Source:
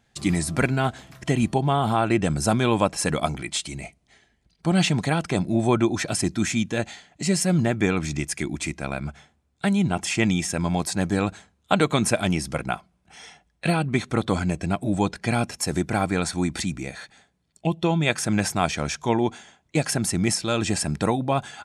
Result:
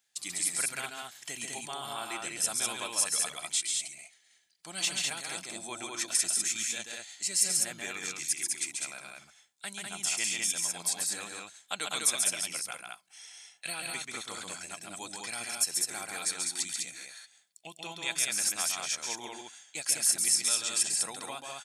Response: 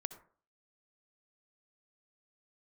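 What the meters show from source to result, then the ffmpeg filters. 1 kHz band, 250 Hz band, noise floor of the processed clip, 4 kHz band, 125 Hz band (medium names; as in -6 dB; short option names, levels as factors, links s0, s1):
-14.5 dB, -26.5 dB, -66 dBFS, -2.0 dB, -31.0 dB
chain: -af "aderivative,aecho=1:1:137|201.2:0.631|0.708"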